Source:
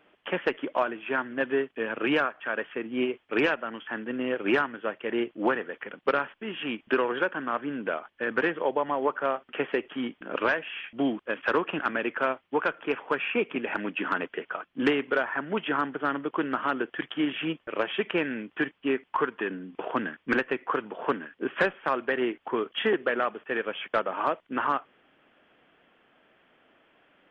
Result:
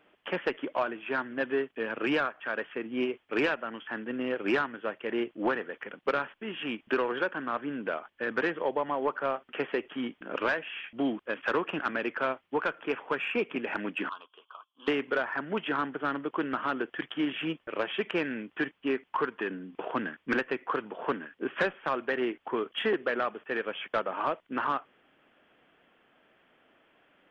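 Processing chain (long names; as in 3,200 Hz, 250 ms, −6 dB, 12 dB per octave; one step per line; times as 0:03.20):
soft clipping −14.5 dBFS, distortion −22 dB
0:14.09–0:14.88: pair of resonant band-passes 1,900 Hz, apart 1.6 octaves
level −2 dB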